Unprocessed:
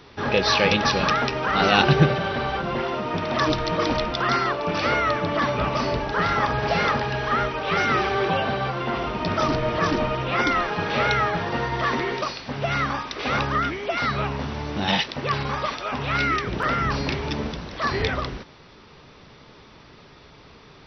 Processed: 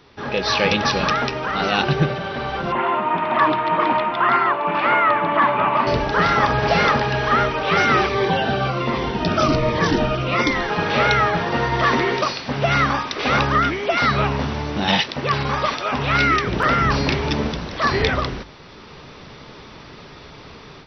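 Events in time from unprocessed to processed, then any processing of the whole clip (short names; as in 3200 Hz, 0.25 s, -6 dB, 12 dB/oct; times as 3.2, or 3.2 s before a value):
2.72–5.87 speaker cabinet 230–2800 Hz, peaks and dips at 260 Hz -4 dB, 480 Hz -10 dB, 970 Hz +8 dB
8.06–10.7 cascading phaser falling 1.3 Hz
whole clip: notches 50/100 Hz; AGC gain up to 11 dB; gain -3 dB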